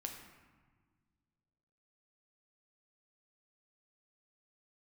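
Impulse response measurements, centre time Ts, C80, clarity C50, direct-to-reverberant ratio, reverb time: 36 ms, 7.0 dB, 5.5 dB, 2.5 dB, 1.5 s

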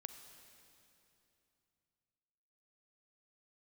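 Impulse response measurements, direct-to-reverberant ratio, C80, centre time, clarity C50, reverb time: 7.5 dB, 8.5 dB, 35 ms, 8.0 dB, 2.9 s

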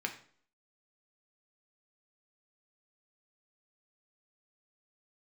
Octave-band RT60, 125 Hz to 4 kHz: 0.50 s, 0.55 s, 0.55 s, 0.50 s, 0.45 s, 0.45 s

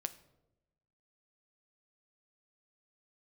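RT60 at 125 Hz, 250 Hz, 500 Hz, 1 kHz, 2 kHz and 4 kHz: 1.3 s, 1.2 s, 1.1 s, 0.80 s, 0.60 s, 0.50 s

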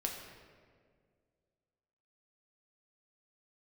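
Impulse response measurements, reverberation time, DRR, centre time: 1.9 s, 0.0 dB, 54 ms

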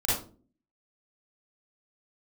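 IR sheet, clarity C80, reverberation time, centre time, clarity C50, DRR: 7.0 dB, 0.40 s, 56 ms, -1.5 dB, -9.0 dB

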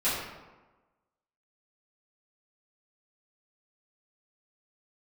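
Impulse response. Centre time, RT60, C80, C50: 73 ms, 1.2 s, 3.0 dB, 0.5 dB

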